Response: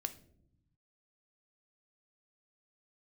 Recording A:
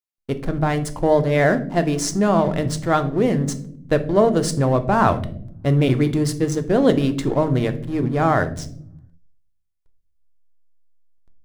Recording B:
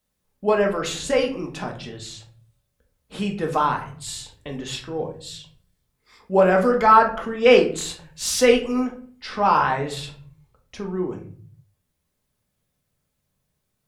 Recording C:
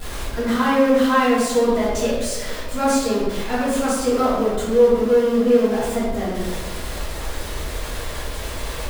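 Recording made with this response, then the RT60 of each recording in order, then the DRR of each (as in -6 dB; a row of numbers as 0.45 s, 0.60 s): A; 0.70 s, 0.45 s, 1.3 s; 8.5 dB, 2.0 dB, -10.5 dB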